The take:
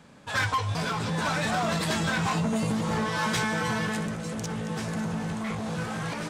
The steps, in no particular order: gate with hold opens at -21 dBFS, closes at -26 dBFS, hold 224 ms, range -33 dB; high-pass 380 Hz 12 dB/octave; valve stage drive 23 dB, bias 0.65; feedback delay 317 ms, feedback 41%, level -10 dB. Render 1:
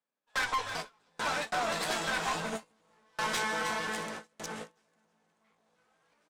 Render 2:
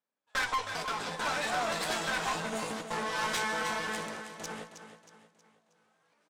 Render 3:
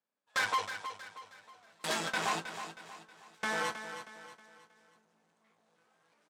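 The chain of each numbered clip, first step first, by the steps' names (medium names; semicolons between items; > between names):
high-pass > valve stage > feedback delay > gate with hold; high-pass > gate with hold > feedback delay > valve stage; valve stage > high-pass > gate with hold > feedback delay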